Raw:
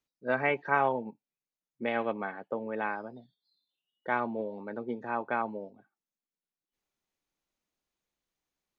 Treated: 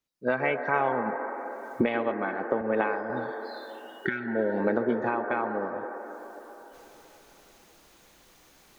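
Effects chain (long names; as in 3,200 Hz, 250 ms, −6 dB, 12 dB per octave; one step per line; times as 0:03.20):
camcorder AGC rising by 37 dB per second
0:03.42–0:04.25: healed spectral selection 430–1,300 Hz before
on a send at −3 dB: elliptic band-pass filter 290–1,800 Hz + convolution reverb RT60 3.8 s, pre-delay 118 ms
0:02.61–0:03.10: on the sum: multiband upward and downward expander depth 70%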